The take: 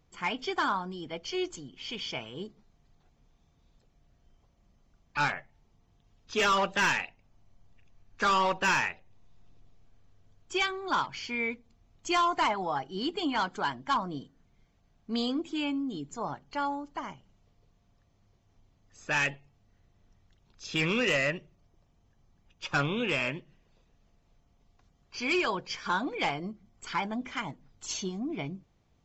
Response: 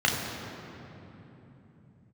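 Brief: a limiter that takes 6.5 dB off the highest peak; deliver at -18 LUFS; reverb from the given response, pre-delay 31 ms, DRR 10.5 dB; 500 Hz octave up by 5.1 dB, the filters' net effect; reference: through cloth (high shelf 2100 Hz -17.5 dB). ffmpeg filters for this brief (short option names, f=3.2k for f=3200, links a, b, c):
-filter_complex "[0:a]equalizer=f=500:t=o:g=8,alimiter=limit=-20.5dB:level=0:latency=1,asplit=2[a][b];[1:a]atrim=start_sample=2205,adelay=31[c];[b][c]afir=irnorm=-1:irlink=0,volume=-25.5dB[d];[a][d]amix=inputs=2:normalize=0,highshelf=f=2.1k:g=-17.5,volume=15.5dB"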